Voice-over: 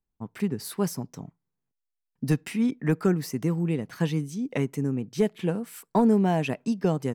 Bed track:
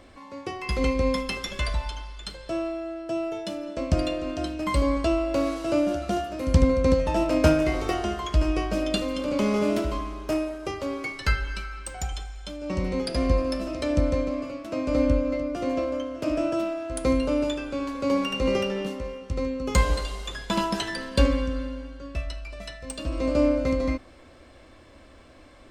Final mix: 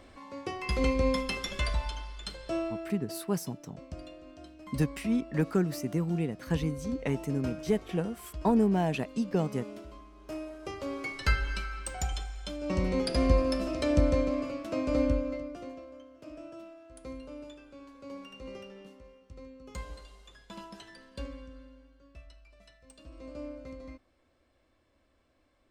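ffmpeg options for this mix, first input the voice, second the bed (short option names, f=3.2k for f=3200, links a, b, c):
-filter_complex "[0:a]adelay=2500,volume=-4dB[a];[1:a]volume=15dB,afade=t=out:st=2.56:d=0.7:silence=0.149624,afade=t=in:st=10.12:d=1.39:silence=0.125893,afade=t=out:st=14.6:d=1.19:silence=0.11885[b];[a][b]amix=inputs=2:normalize=0"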